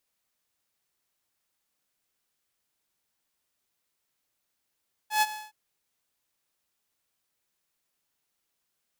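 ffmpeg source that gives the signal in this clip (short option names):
-f lavfi -i "aevalsrc='0.15*(2*mod(855*t,1)-1)':d=0.418:s=44100,afade=t=in:d=0.118,afade=t=out:st=0.118:d=0.037:silence=0.168,afade=t=out:st=0.22:d=0.198"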